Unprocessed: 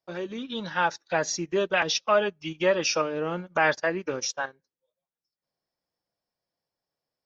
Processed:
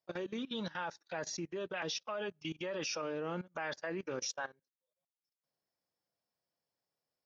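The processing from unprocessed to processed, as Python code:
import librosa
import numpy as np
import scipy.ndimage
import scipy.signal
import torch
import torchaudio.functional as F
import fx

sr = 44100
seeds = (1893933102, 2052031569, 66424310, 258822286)

y = scipy.signal.sosfilt(scipy.signal.butter(2, 75.0, 'highpass', fs=sr, output='sos'), x)
y = fx.level_steps(y, sr, step_db=18)
y = fx.air_absorb(y, sr, metres=63.0, at=(1.22, 1.8))
y = y * librosa.db_to_amplitude(-2.0)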